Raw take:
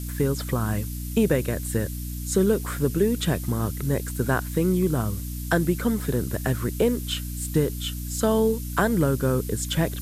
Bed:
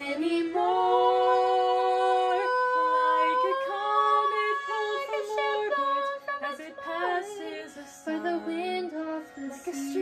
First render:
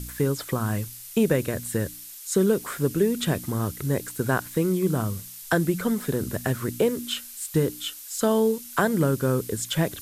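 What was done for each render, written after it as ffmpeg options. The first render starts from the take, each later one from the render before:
-af "bandreject=f=60:t=h:w=4,bandreject=f=120:t=h:w=4,bandreject=f=180:t=h:w=4,bandreject=f=240:t=h:w=4,bandreject=f=300:t=h:w=4"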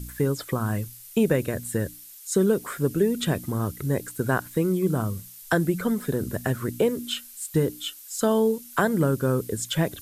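-af "afftdn=nr=6:nf=-42"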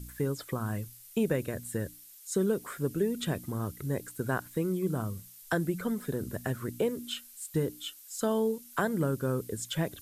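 -af "volume=-7dB"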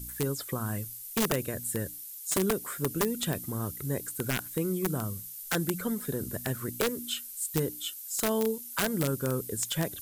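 -af "crystalizer=i=1.5:c=0,aeval=exprs='(mod(9.44*val(0)+1,2)-1)/9.44':c=same"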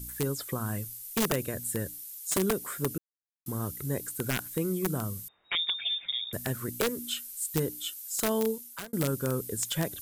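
-filter_complex "[0:a]asettb=1/sr,asplit=3[a][b][c];[a]atrim=end=5.284[d];[b]atrim=start=5.28:end=6.33,asetpts=PTS-STARTPTS,afade=t=in:d=0.004:c=qsin,afade=t=out:st=1.046:d=0.004:c=qsin,lowpass=f=3.2k:t=q:w=0.5098,lowpass=f=3.2k:t=q:w=0.6013,lowpass=f=3.2k:t=q:w=0.9,lowpass=f=3.2k:t=q:w=2.563,afreqshift=-3800[e];[c]atrim=start=6.326[f];[d][e]acrossfade=d=0.004:c1=hsin:c2=qsin[g];[g][f]acrossfade=d=0.004:c1=qsin:c2=hsin,asplit=4[h][i][j][k];[h]atrim=end=2.98,asetpts=PTS-STARTPTS,afade=t=out:st=2.976:d=0.004:c=hsin[l];[i]atrim=start=2.98:end=3.46,asetpts=PTS-STARTPTS,volume=0[m];[j]atrim=start=3.46:end=8.93,asetpts=PTS-STARTPTS,afade=t=in:d=0.004:c=hsin,afade=t=out:st=5.04:d=0.43[n];[k]atrim=start=8.93,asetpts=PTS-STARTPTS,afade=t=in:d=0.004:c=hsin[o];[l][m][n][o]concat=n=4:v=0:a=1"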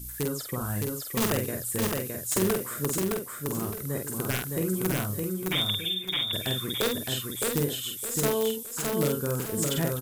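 -filter_complex "[0:a]asplit=2[a][b];[b]adelay=48,volume=-4.5dB[c];[a][c]amix=inputs=2:normalize=0,aecho=1:1:614|1228|1842|2456:0.708|0.227|0.0725|0.0232"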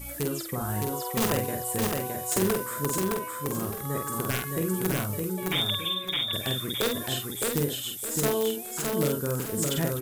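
-filter_complex "[1:a]volume=-13.5dB[a];[0:a][a]amix=inputs=2:normalize=0"

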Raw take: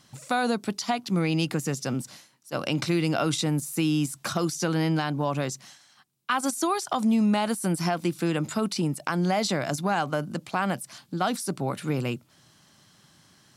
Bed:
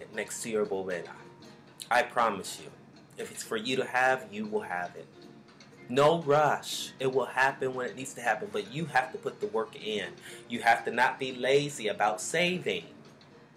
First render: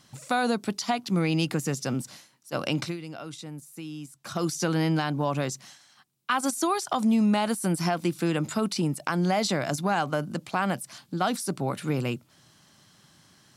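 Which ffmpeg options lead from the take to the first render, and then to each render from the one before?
-filter_complex "[0:a]asplit=3[a][b][c];[a]atrim=end=2.97,asetpts=PTS-STARTPTS,afade=t=out:st=2.67:d=0.3:c=qsin:silence=0.199526[d];[b]atrim=start=2.97:end=4.24,asetpts=PTS-STARTPTS,volume=-14dB[e];[c]atrim=start=4.24,asetpts=PTS-STARTPTS,afade=t=in:d=0.3:c=qsin:silence=0.199526[f];[d][e][f]concat=n=3:v=0:a=1"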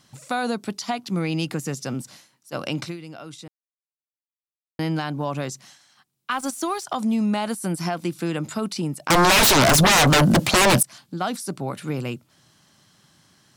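-filter_complex "[0:a]asettb=1/sr,asplit=3[a][b][c];[a]atrim=end=6.314[d];[b]atrim=start=6.31:end=6.84,asetpts=PTS-STARTPTS,afade=t=in:d=0.004:c=qsin,afade=t=out:st=0.526:d=0.004:c=qsin,aeval=exprs='sgn(val(0))*max(abs(val(0))-0.00473,0)':c=same[e];[c]atrim=start=6.836[f];[d][e]acrossfade=d=0.004:c1=hsin:c2=qsin[g];[g][f]acrossfade=d=0.004:c1=qsin:c2=hsin,asettb=1/sr,asplit=3[h][i][j];[h]atrim=end=9.104[k];[i]atrim=start=9.1:end=10.83,asetpts=PTS-STARTPTS,afade=t=in:d=0.004:c=qsin,afade=t=out:st=1.726:d=0.004:c=qsin,aeval=exprs='0.251*sin(PI/2*8.91*val(0)/0.251)':c=same[l];[j]atrim=start=10.826[m];[k][l]acrossfade=d=0.004:c1=hsin:c2=qsin[n];[n][m]acrossfade=d=0.004:c1=qsin:c2=hsin,asplit=3[o][p][q];[o]atrim=end=3.48,asetpts=PTS-STARTPTS,afade=t=out:st=3.476:d=0.004:c=hsin[r];[p]atrim=start=3.48:end=4.79,asetpts=PTS-STARTPTS,volume=0[s];[q]atrim=start=4.79,asetpts=PTS-STARTPTS,afade=t=in:d=0.004:c=hsin[t];[r][s][t]concat=n=3:v=0:a=1"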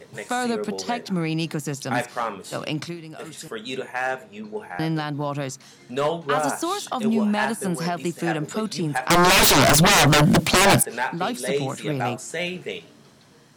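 -filter_complex "[1:a]volume=-0.5dB[a];[0:a][a]amix=inputs=2:normalize=0"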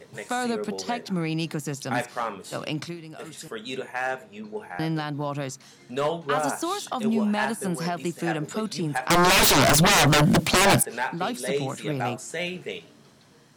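-af "volume=-2.5dB"

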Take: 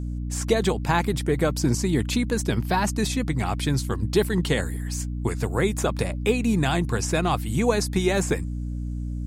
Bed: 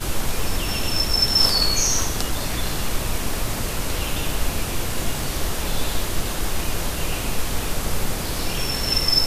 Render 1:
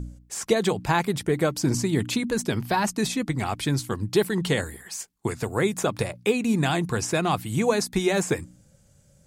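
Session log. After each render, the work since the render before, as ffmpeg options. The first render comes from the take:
-af "bandreject=f=60:t=h:w=4,bandreject=f=120:t=h:w=4,bandreject=f=180:t=h:w=4,bandreject=f=240:t=h:w=4,bandreject=f=300:t=h:w=4"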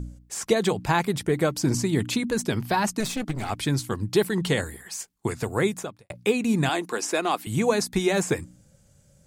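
-filter_complex "[0:a]asettb=1/sr,asplit=3[a][b][c];[a]atrim=end=3.004[d];[b]atrim=start=3:end=3.5,asetpts=PTS-STARTPTS,afade=t=in:d=0.004:c=qsin,afade=t=out:st=0.496:d=0.004:c=qsin,aeval=exprs='clip(val(0),-1,0.0251)':c=same[e];[c]atrim=start=3.496[f];[d][e]acrossfade=d=0.004:c1=hsin:c2=qsin[g];[g][f]acrossfade=d=0.004:c1=qsin:c2=hsin,asettb=1/sr,asplit=3[h][i][j];[h]atrim=end=6.694[k];[i]atrim=start=6.69:end=7.47,asetpts=PTS-STARTPTS,afade=t=in:d=0.004:c=qsin,afade=t=out:st=0.776:d=0.004:c=qsin,highpass=f=270:w=0.5412,highpass=f=270:w=1.3066[l];[j]atrim=start=7.466[m];[k][l]acrossfade=d=0.004:c1=hsin:c2=qsin[n];[n][m]acrossfade=d=0.004:c1=qsin:c2=hsin,asplit=2[o][p];[o]atrim=end=6.1,asetpts=PTS-STARTPTS,afade=t=out:st=5.68:d=0.42:c=qua[q];[p]atrim=start=6.1,asetpts=PTS-STARTPTS,afade=t=in:d=0.004:c=hsin[r];[q][r]concat=n=2:v=0:a=1"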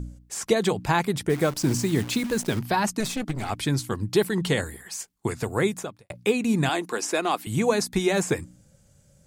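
-filter_complex "[0:a]asplit=3[a][b][c];[a]afade=t=out:st=1.29:d=0.02[d];[b]acrusher=bits=7:dc=4:mix=0:aa=0.000001,afade=t=in:st=1.29:d=0.02,afade=t=out:st=2.58:d=0.02[e];[c]afade=t=in:st=2.58:d=0.02[f];[d][e][f]amix=inputs=3:normalize=0"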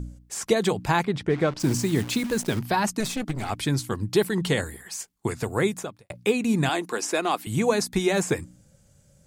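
-filter_complex "[0:a]asplit=3[a][b][c];[a]afade=t=out:st=1.03:d=0.02[d];[b]lowpass=3.9k,afade=t=in:st=1.03:d=0.02,afade=t=out:st=1.59:d=0.02[e];[c]afade=t=in:st=1.59:d=0.02[f];[d][e][f]amix=inputs=3:normalize=0"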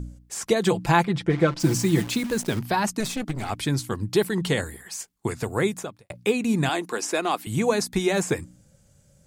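-filter_complex "[0:a]asettb=1/sr,asplit=3[a][b][c];[a]atrim=end=0.664[d];[b]atrim=start=0.66:end=2.07,asetpts=PTS-STARTPTS,afade=t=in:d=0.004:c=qsin,afade=t=out:st=1.406:d=0.004:c=qsin,aecho=1:1:5.9:0.71,atrim=end_sample=62181[e];[c]atrim=start=2.066[f];[d][e]acrossfade=d=0.004:c1=hsin:c2=qsin[g];[g][f]acrossfade=d=0.004:c1=qsin:c2=hsin"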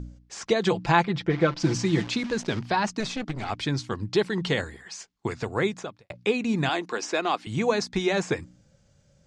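-af "lowpass=f=5.9k:w=0.5412,lowpass=f=5.9k:w=1.3066,lowshelf=f=430:g=-3.5"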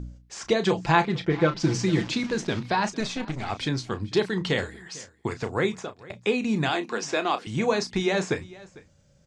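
-filter_complex "[0:a]asplit=2[a][b];[b]adelay=32,volume=-11dB[c];[a][c]amix=inputs=2:normalize=0,aecho=1:1:450:0.0891"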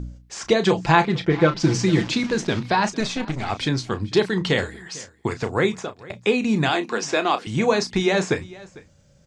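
-af "volume=4.5dB,alimiter=limit=-2dB:level=0:latency=1"

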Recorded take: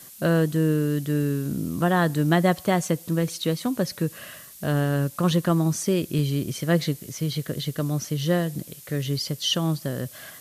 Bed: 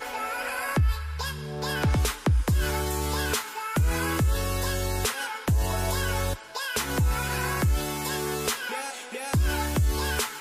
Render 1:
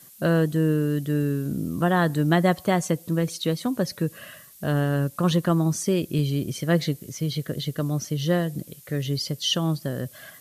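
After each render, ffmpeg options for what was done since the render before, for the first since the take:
-af "afftdn=nr=6:nf=-45"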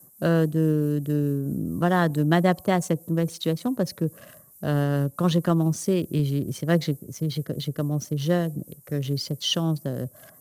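-filter_complex "[0:a]acrossover=split=110|1100|7200[a][b][c][d];[c]aeval=exprs='sgn(val(0))*max(abs(val(0))-0.00708,0)':c=same[e];[d]tremolo=f=4.6:d=0.43[f];[a][b][e][f]amix=inputs=4:normalize=0"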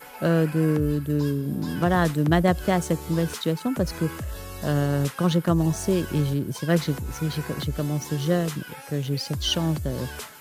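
-filter_complex "[1:a]volume=-9.5dB[a];[0:a][a]amix=inputs=2:normalize=0"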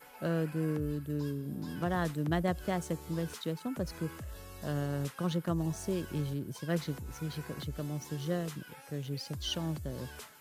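-af "volume=-11dB"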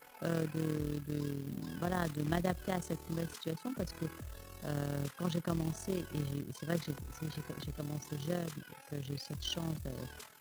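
-af "acrusher=bits=4:mode=log:mix=0:aa=0.000001,tremolo=f=40:d=0.71"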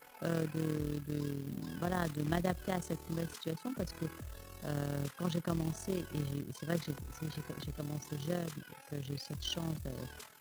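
-af anull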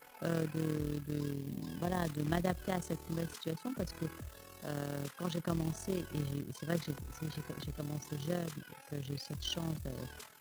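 -filter_complex "[0:a]asettb=1/sr,asplit=3[a][b][c];[a]atrim=end=1.334[d];[b]atrim=start=1.33:end=2.08,asetpts=PTS-STARTPTS,afade=t=in:d=0.004:c=qsin,afade=t=out:st=0.746:d=0.004:c=qsin,equalizer=f=1.4k:t=o:w=0.24:g=-13[e];[c]atrim=start=2.076[f];[d][e]acrossfade=d=0.004:c1=hsin:c2=qsin[g];[g][f]acrossfade=d=0.004:c1=qsin:c2=hsin,asettb=1/sr,asplit=3[h][i][j];[h]atrim=end=4.294[k];[i]atrim=start=4.29:end=5.39,asetpts=PTS-STARTPTS,afade=t=in:d=0.004:c=qsin,afade=t=out:st=1.096:d=0.004:c=qsin,highpass=f=180:p=1[l];[j]atrim=start=5.386[m];[k][l]acrossfade=d=0.004:c1=hsin:c2=qsin[n];[n][m]acrossfade=d=0.004:c1=qsin:c2=hsin"

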